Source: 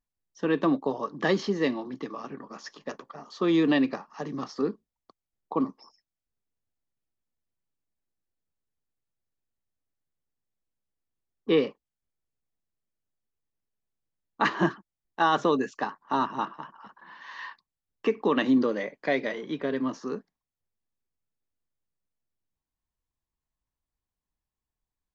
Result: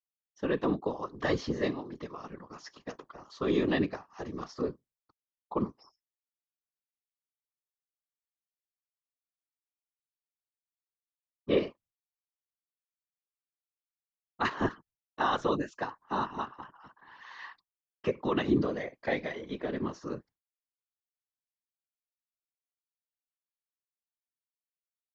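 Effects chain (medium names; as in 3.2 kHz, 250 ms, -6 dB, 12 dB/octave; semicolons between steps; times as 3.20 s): expander -51 dBFS; whisper effect; trim -5 dB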